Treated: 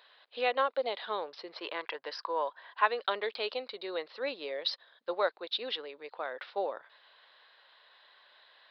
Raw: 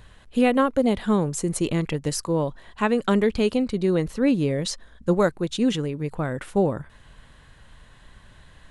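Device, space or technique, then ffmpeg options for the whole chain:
musical greeting card: -filter_complex "[0:a]asettb=1/sr,asplit=3[link_01][link_02][link_03];[link_01]atrim=end=1.574[link_04];[link_02]atrim=start=1.57:end=2.86,asetpts=PTS-STARTPTS,afade=type=in:duration=0.004:curve=qsin,afade=type=out:start_time=1.286:duration=0.004:curve=qsin,equalizer=frequency=200:width_type=o:width=0.33:gain=-11,equalizer=frequency=1000:width_type=o:width=0.33:gain=8,equalizer=frequency=1600:width_type=o:width=0.33:gain=8,equalizer=frequency=4000:width_type=o:width=0.33:gain=-6[link_05];[link_03]atrim=start=2.856[link_06];[link_04][link_05]acrossfade=duration=0.004:curve1=hsin:curve2=qsin[link_07];[link_07][link_06]acrossfade=duration=0.004:curve1=qsin:curve2=hsin,aresample=11025,aresample=44100,highpass=frequency=530:width=0.5412,highpass=frequency=530:width=1.3066,equalizer=frequency=3800:width_type=o:width=0.37:gain=7.5,volume=-5.5dB"

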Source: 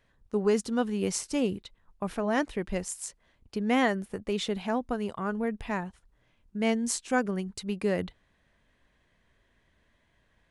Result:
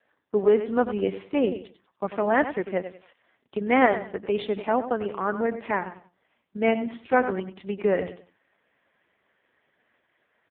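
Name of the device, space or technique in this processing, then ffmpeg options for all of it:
telephone: -filter_complex "[0:a]asplit=3[link_01][link_02][link_03];[link_01]afade=type=out:start_time=7.25:duration=0.02[link_04];[link_02]highpass=130,afade=type=in:start_time=7.25:duration=0.02,afade=type=out:start_time=7.67:duration=0.02[link_05];[link_03]afade=type=in:start_time=7.67:duration=0.02[link_06];[link_04][link_05][link_06]amix=inputs=3:normalize=0,highpass=310,lowpass=3000,aecho=1:1:95|190|285:0.282|0.0733|0.0191,volume=7.5dB" -ar 8000 -c:a libopencore_amrnb -b:a 4750

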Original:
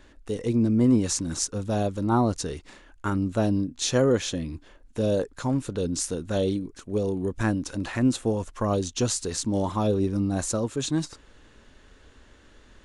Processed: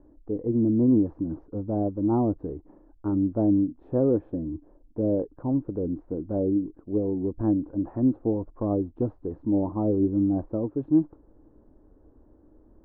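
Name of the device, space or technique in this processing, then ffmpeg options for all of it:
under water: -af "lowpass=frequency=840:width=0.5412,lowpass=frequency=840:width=1.3066,equalizer=frequency=310:width_type=o:width=0.31:gain=11,volume=-3dB"

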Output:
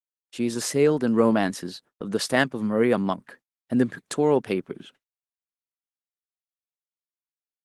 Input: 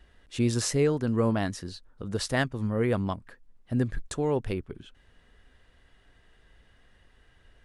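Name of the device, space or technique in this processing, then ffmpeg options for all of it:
video call: -af "highpass=frequency=170:width=0.5412,highpass=frequency=170:width=1.3066,dynaudnorm=framelen=170:gausssize=9:maxgain=7dB,agate=range=-49dB:threshold=-50dB:ratio=16:detection=peak" -ar 48000 -c:a libopus -b:a 20k

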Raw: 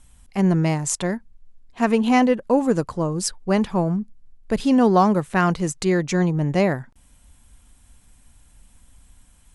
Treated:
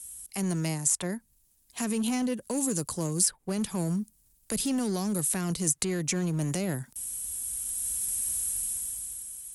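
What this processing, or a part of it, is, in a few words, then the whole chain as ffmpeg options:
FM broadcast chain: -filter_complex "[0:a]highpass=46,dynaudnorm=framelen=220:gausssize=11:maxgain=16.5dB,acrossover=split=210|440|2500[link_01][link_02][link_03][link_04];[link_01]acompressor=threshold=-20dB:ratio=4[link_05];[link_02]acompressor=threshold=-20dB:ratio=4[link_06];[link_03]acompressor=threshold=-30dB:ratio=4[link_07];[link_04]acompressor=threshold=-43dB:ratio=4[link_08];[link_05][link_06][link_07][link_08]amix=inputs=4:normalize=0,aemphasis=mode=production:type=75fm,alimiter=limit=-13.5dB:level=0:latency=1:release=15,asoftclip=type=hard:threshold=-15dB,lowpass=frequency=15000:width=0.5412,lowpass=frequency=15000:width=1.3066,aemphasis=mode=production:type=75fm,volume=-8dB"

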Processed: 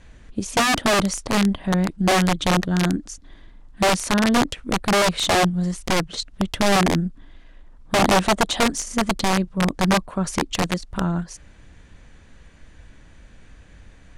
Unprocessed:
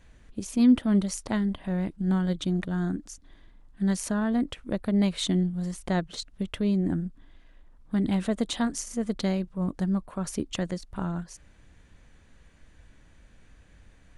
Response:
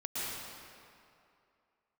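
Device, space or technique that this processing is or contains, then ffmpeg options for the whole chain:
overflowing digital effects unit: -filter_complex "[0:a]aeval=exprs='(mod(10.6*val(0)+1,2)-1)/10.6':channel_layout=same,lowpass=9400,asettb=1/sr,asplit=3[link_01][link_02][link_03];[link_01]atrim=end=8.024[link_04];[link_02]atrim=start=8.02:end=8.64,asetpts=PTS-STARTPTS,afade=type=in:duration=0.004:curve=qsin,afade=type=out:start_time=0.616:duration=0.004:curve=qsin,equalizer=frequency=730:width=1.5:gain=6[link_05];[link_03]atrim=start=8.636[link_06];[link_04][link_05]acrossfade=duration=0.004:curve1=hsin:curve2=qsin[link_07];[link_07][link_06]acrossfade=duration=0.004:curve1=qsin:curve2=hsin,volume=8dB"

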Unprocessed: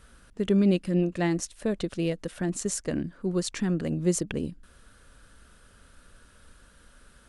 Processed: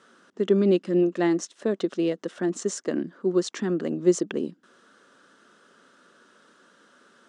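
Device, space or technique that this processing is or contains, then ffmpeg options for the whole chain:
television speaker: -af "highpass=frequency=210:width=0.5412,highpass=frequency=210:width=1.3066,equalizer=frequency=370:width_type=q:width=4:gain=6,equalizer=frequency=1200:width_type=q:width=4:gain=3,equalizer=frequency=2400:width_type=q:width=4:gain=-6,equalizer=frequency=4500:width_type=q:width=4:gain=-4,lowpass=frequency=6900:width=0.5412,lowpass=frequency=6900:width=1.3066,volume=2dB"

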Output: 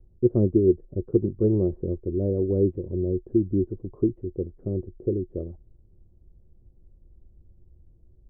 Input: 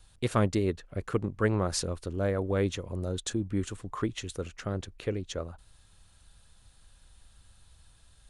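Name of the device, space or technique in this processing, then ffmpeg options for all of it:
under water: -af "lowpass=frequency=460:width=0.5412,lowpass=frequency=460:width=1.3066,equalizer=frequency=360:width_type=o:width=0.24:gain=12,volume=4.5dB"

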